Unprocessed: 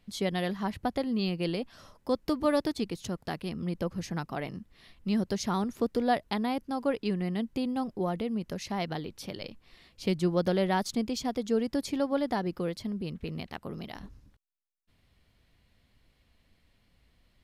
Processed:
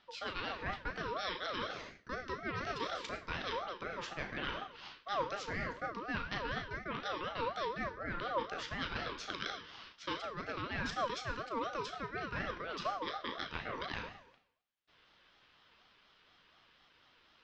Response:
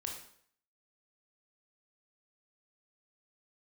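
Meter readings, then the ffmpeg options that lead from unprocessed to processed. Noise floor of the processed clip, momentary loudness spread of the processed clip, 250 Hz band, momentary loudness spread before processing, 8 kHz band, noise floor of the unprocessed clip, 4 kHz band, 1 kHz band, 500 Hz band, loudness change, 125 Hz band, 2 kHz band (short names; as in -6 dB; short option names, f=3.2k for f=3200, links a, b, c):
-68 dBFS, 5 LU, -17.0 dB, 13 LU, -11.0 dB, -69 dBFS, -2.5 dB, -3.5 dB, -10.0 dB, -8.0 dB, -12.0 dB, +2.0 dB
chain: -filter_complex "[0:a]acrossover=split=420 4200:gain=0.141 1 0.2[a][b][c];[a][b][c]amix=inputs=3:normalize=0,asplit=2[d][e];[1:a]atrim=start_sample=2205,adelay=36[f];[e][f]afir=irnorm=-1:irlink=0,volume=-4dB[g];[d][g]amix=inputs=2:normalize=0,flanger=delay=6.4:depth=9.7:regen=-61:speed=0.88:shape=triangular,areverse,acompressor=threshold=-47dB:ratio=6,areverse,highpass=f=190:w=0.5412,highpass=f=190:w=1.3066,equalizer=f=220:t=q:w=4:g=10,equalizer=f=520:t=q:w=4:g=-7,equalizer=f=2.4k:t=q:w=4:g=5,lowpass=f=6.1k:w=0.5412,lowpass=f=6.1k:w=1.3066,aeval=exprs='val(0)*sin(2*PI*850*n/s+850*0.2/4.1*sin(2*PI*4.1*n/s))':c=same,volume=13.5dB"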